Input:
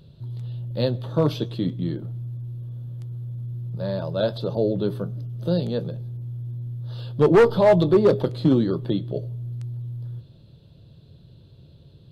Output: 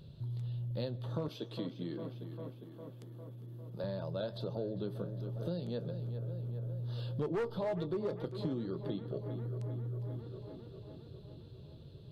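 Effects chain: 1.28–3.84 HPF 260 Hz 12 dB/oct; tape echo 0.403 s, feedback 70%, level -14 dB, low-pass 2900 Hz; compressor 4:1, threshold -33 dBFS, peak gain reduction 17 dB; gain -3.5 dB

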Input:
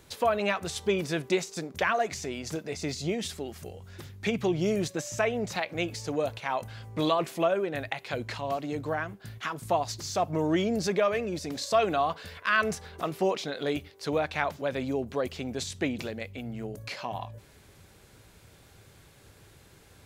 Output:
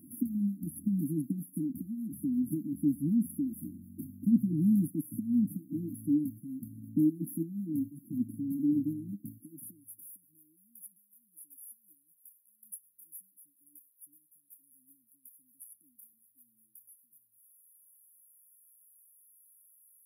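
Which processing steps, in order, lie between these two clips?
dynamic EQ 400 Hz, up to -6 dB, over -40 dBFS, Q 0.77; in parallel at +2.5 dB: limiter -22.5 dBFS, peak gain reduction 9.5 dB; on the sum: high-pass sweep 260 Hz -> 2800 Hz, 9.22–10.46; brick-wall FIR band-stop 320–10000 Hz

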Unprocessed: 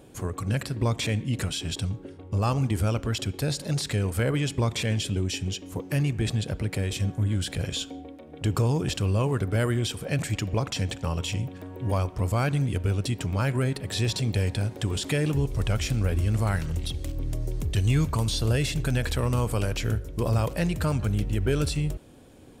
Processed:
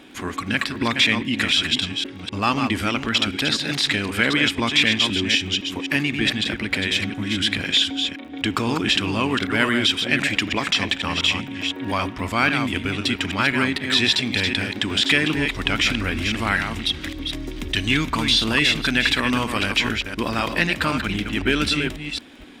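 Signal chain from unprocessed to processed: reverse delay 0.255 s, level -6 dB; graphic EQ 125/250/500/2000/4000 Hz -7/+10/-11/+7/+11 dB; crackle 29/s -38 dBFS; tone controls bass -12 dB, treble -10 dB; notch 4300 Hz, Q 12; gain +8 dB

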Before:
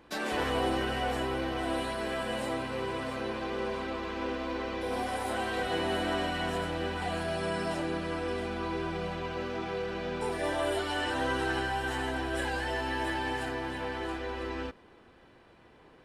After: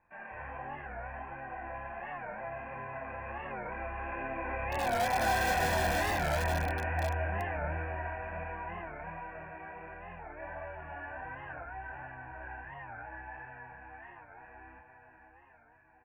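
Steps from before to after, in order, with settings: Doppler pass-by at 5.36, 8 m/s, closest 4.2 m; steep low-pass 2500 Hz 72 dB/oct; bell 260 Hz -9 dB 1.2 oct; notches 60/120/180/240/300/360/420 Hz; diffused feedback echo 0.531 s, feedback 64%, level -7.5 dB; chorus 1.4 Hz, depth 6.1 ms; dynamic EQ 1100 Hz, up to -6 dB, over -54 dBFS, Q 1.7; in parallel at -5 dB: wrapped overs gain 36 dB; on the sum: comb 1.2 ms, depth 64%; record warp 45 rpm, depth 160 cents; gain +7 dB

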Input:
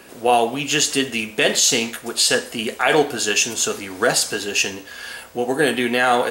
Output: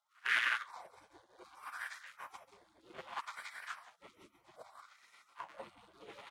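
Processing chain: cycle switcher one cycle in 3, muted; bell 80 Hz -6.5 dB 0.61 oct; notch 1300 Hz, Q 6.8; loudspeakers at several distances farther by 12 m -6 dB, 48 m -7 dB, 62 m -3 dB; spectral gate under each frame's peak -20 dB weak; wah 0.64 Hz 330–1800 Hz, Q 3.3; upward expander 1.5:1, over -51 dBFS; gain +4 dB

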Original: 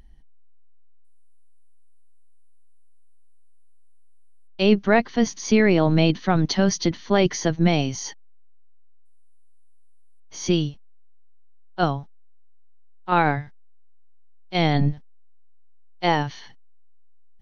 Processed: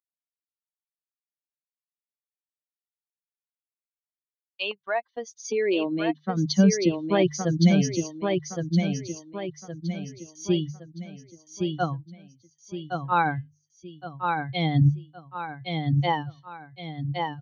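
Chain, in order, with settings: per-bin expansion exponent 2; 4.71–6.37 compressor, threshold -25 dBFS, peak gain reduction 10.5 dB; high-pass sweep 1100 Hz -> 110 Hz, 4.56–7.09; gate with hold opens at -46 dBFS; notches 50/100/150 Hz; feedback echo 1.116 s, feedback 41%, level -4 dB

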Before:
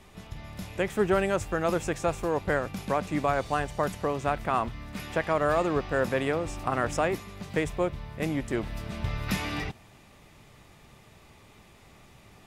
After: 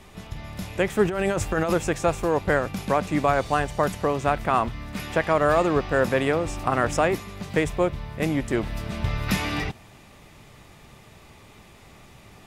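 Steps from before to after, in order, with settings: 1.05–1.73 negative-ratio compressor -29 dBFS, ratio -1; gain +5 dB

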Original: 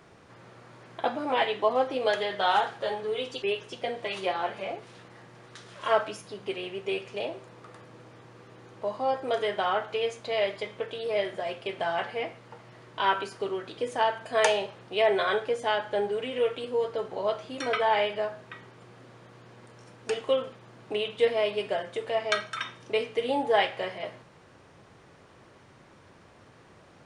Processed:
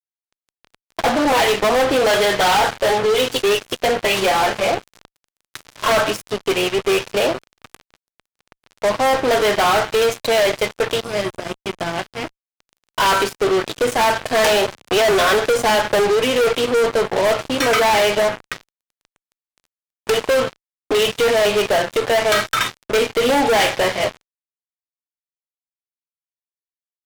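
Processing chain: 11–12.59 spectral gain 380–4800 Hz -12 dB; fuzz box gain 36 dB, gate -41 dBFS; 14.71–16.1 three-band squash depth 40%

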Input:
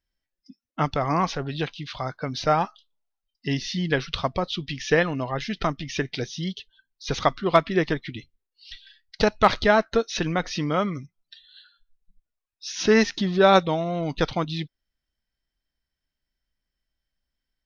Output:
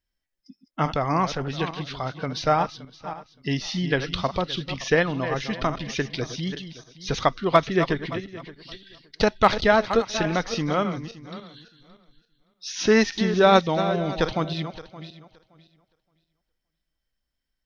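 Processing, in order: regenerating reverse delay 0.285 s, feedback 41%, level -10.5 dB

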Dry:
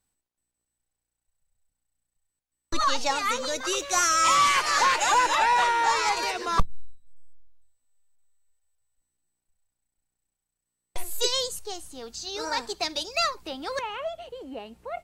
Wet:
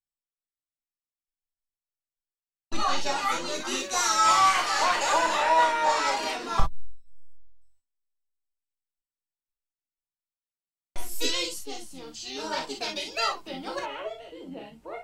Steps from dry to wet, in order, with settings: harmoniser -7 st -5 dB; non-linear reverb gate 80 ms flat, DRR 0.5 dB; gate with hold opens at -44 dBFS; gain -6 dB

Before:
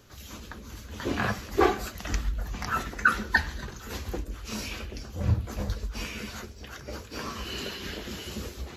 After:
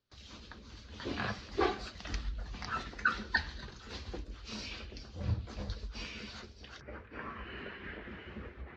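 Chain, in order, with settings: ladder low-pass 5300 Hz, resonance 45%, from 6.8 s 2300 Hz; gate with hold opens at -49 dBFS

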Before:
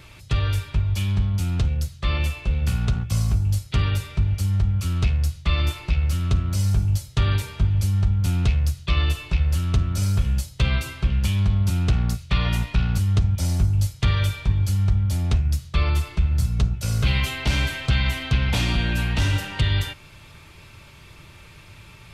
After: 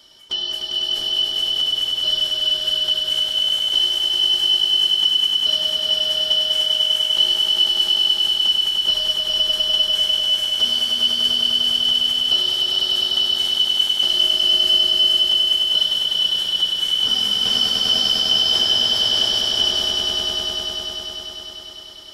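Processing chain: four-band scrambler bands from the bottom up 3412; swelling echo 0.1 s, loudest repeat 5, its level -3.5 dB; gain -4 dB

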